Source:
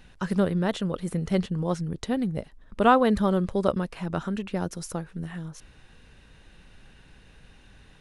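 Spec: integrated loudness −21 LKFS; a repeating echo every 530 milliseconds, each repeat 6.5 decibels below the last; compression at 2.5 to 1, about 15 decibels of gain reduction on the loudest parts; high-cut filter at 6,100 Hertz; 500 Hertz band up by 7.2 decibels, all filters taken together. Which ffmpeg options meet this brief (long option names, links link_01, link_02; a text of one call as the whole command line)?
ffmpeg -i in.wav -af "lowpass=6100,equalizer=frequency=500:width_type=o:gain=8.5,acompressor=threshold=-33dB:ratio=2.5,aecho=1:1:530|1060|1590|2120|2650|3180:0.473|0.222|0.105|0.0491|0.0231|0.0109,volume=12dB" out.wav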